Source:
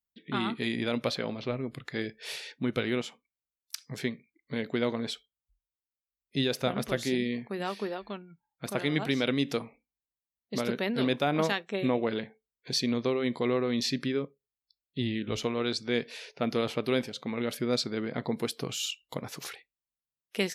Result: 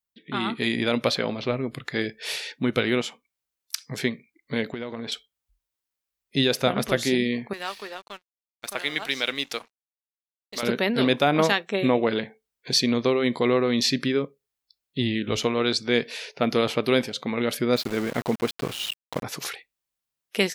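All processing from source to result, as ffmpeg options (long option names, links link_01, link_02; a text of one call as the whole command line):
ffmpeg -i in.wav -filter_complex "[0:a]asettb=1/sr,asplit=3[link_01][link_02][link_03];[link_01]atrim=end=4.724[link_04];[link_02]atrim=start=4.72:end=5.12,asetpts=PTS-STARTPTS,afade=type=in:duration=0.004:curve=qsin,afade=type=out:start_time=0.396:duration=0.004:curve=qsin,lowpass=3900,acompressor=threshold=-34dB:ratio=12:attack=3.2:release=140:knee=1:detection=peak[link_05];[link_03]atrim=start=5.116[link_06];[link_04][link_05]acrossfade=duration=0.004:curve1=hsin:curve2=qsin[link_07];[link_07][link_06]acrossfade=duration=0.004:curve1=qsin:curve2=hsin,asettb=1/sr,asplit=3[link_08][link_09][link_10];[link_08]atrim=end=7.534[link_11];[link_09]atrim=start=7.53:end=10.63,asetpts=PTS-STARTPTS,afade=type=in:duration=0.004:curve=qsin,afade=type=out:start_time=3.096:duration=0.004:curve=qsin,highpass=frequency=1300:poles=1,aeval=exprs='sgn(val(0))*max(abs(val(0))-0.00188,0)':channel_layout=same[link_12];[link_10]atrim=start=10.626[link_13];[link_11][link_12]acrossfade=duration=0.004:curve1=hsin:curve2=qsin[link_14];[link_14][link_13]acrossfade=duration=0.004:curve1=qsin:curve2=hsin,asettb=1/sr,asplit=3[link_15][link_16][link_17];[link_15]atrim=end=17.764[link_18];[link_16]atrim=start=17.76:end=19.23,asetpts=PTS-STARTPTS,afade=type=in:duration=0.004:curve=qsin,afade=type=out:start_time=1.466:duration=0.004:curve=qsin,lowpass=3200,aeval=exprs='val(0)*gte(abs(val(0)),0.0112)':channel_layout=same[link_19];[link_17]atrim=start=19.226[link_20];[link_18][link_19]acrossfade=duration=0.004:curve1=hsin:curve2=qsin[link_21];[link_21][link_20]acrossfade=duration=0.004:curve1=qsin:curve2=hsin,lowshelf=frequency=360:gain=-3.5,dynaudnorm=framelen=330:gausssize=3:maxgain=5.5dB,volume=2.5dB" out.wav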